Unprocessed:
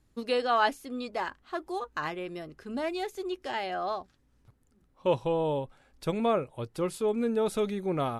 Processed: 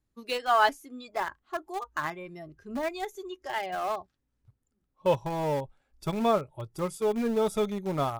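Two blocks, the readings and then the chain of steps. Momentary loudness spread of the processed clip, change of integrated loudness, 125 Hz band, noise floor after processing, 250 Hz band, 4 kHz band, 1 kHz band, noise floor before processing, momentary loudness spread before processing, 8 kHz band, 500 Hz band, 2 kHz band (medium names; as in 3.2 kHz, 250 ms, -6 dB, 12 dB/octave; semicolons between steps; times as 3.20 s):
13 LU, +1.0 dB, +1.5 dB, -79 dBFS, -0.5 dB, +0.5 dB, +2.0 dB, -67 dBFS, 11 LU, no reading, 0.0 dB, +2.0 dB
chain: spectral noise reduction 12 dB; dynamic bell 350 Hz, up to -7 dB, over -47 dBFS, Q 4.6; in parallel at -8 dB: small samples zeroed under -28.5 dBFS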